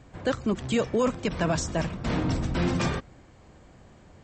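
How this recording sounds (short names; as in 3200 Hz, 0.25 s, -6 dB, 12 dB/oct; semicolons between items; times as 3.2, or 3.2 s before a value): noise floor -54 dBFS; spectral tilt -5.5 dB/oct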